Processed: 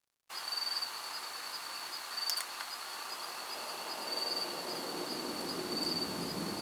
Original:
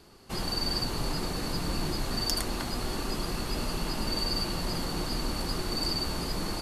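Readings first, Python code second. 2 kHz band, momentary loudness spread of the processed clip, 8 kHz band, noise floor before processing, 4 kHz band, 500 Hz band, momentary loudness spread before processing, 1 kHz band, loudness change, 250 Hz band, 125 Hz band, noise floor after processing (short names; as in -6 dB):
-3.5 dB, 6 LU, -4.5 dB, -36 dBFS, -4.0 dB, -7.0 dB, 4 LU, -4.5 dB, -5.5 dB, -9.5 dB, -17.5 dB, -45 dBFS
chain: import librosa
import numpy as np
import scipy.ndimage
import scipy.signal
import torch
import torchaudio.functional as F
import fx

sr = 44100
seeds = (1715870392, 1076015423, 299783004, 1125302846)

y = fx.tracing_dist(x, sr, depth_ms=0.024)
y = fx.filter_sweep_highpass(y, sr, from_hz=1100.0, to_hz=180.0, start_s=2.8, end_s=6.38, q=1.1)
y = np.sign(y) * np.maximum(np.abs(y) - 10.0 ** (-52.5 / 20.0), 0.0)
y = y * 10.0 ** (-3.5 / 20.0)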